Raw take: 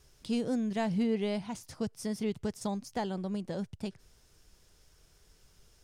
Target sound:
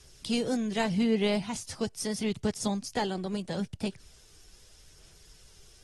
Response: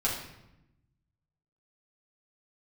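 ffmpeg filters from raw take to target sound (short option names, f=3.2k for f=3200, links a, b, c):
-filter_complex "[0:a]aphaser=in_gain=1:out_gain=1:delay=2.7:decay=0.25:speed=0.79:type=sinusoidal,acrossover=split=340|880|2200[a][b][c][d];[d]acontrast=58[e];[a][b][c][e]amix=inputs=4:normalize=0,volume=2.5dB" -ar 44100 -c:a aac -b:a 32k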